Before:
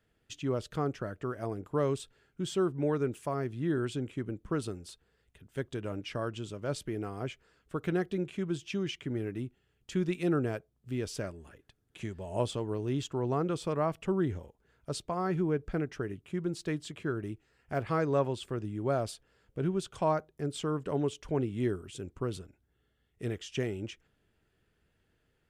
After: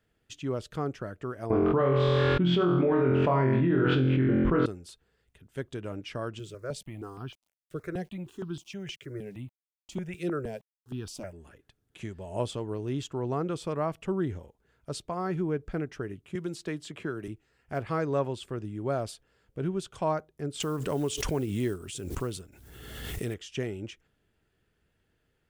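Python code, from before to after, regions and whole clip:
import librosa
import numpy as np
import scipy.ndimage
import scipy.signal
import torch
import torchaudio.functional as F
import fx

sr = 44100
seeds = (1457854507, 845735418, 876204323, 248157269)

y = fx.chain(x, sr, fx.lowpass(hz=3100.0, slope=24),
    fx.room_flutter(wall_m=3.9, rt60_s=0.64),
    fx.env_flatten(amount_pct=100), at=(1.5, 4.66))
y = fx.chain(y, sr, fx.sample_gate(floor_db=-58.0),
    fx.phaser_held(hz=6.4, low_hz=240.0, high_hz=2100.0), at=(6.39, 11.33))
y = fx.chain(y, sr, fx.low_shelf(hz=120.0, db=-8.5),
    fx.band_squash(depth_pct=70), at=(16.35, 17.28))
y = fx.chain(y, sr, fx.block_float(bits=7),
    fx.high_shelf(hz=4800.0, db=10.5),
    fx.pre_swell(db_per_s=34.0), at=(20.6, 23.34))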